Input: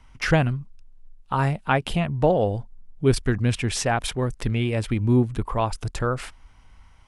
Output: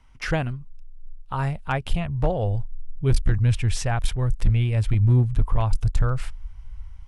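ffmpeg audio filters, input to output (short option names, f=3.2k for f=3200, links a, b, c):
-af "asubboost=boost=11.5:cutoff=87,volume=7.5dB,asoftclip=hard,volume=-7.5dB,volume=-4.5dB"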